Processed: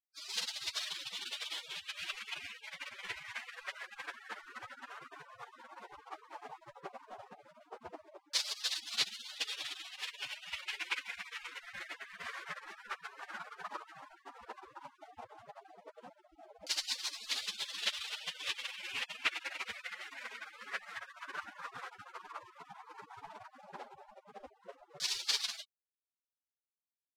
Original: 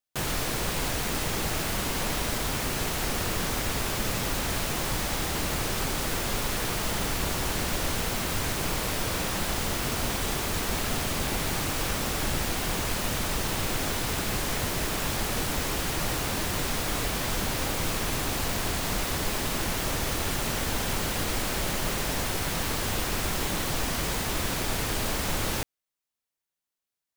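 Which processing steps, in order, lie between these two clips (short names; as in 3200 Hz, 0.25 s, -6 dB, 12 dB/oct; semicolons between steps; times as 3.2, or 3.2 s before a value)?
spectral gate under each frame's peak -30 dB weak; 19.86–21.03 notches 50/100/150/200/250/300/350 Hz; LFO low-pass saw down 0.12 Hz 570–4700 Hz; gain +11.5 dB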